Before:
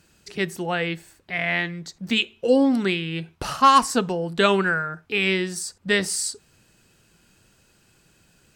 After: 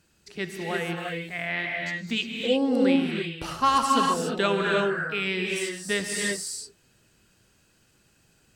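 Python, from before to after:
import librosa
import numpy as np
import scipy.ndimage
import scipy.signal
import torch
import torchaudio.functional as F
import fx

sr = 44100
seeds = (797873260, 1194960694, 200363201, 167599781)

y = fx.rev_gated(x, sr, seeds[0], gate_ms=370, shape='rising', drr_db=0.0)
y = F.gain(torch.from_numpy(y), -6.5).numpy()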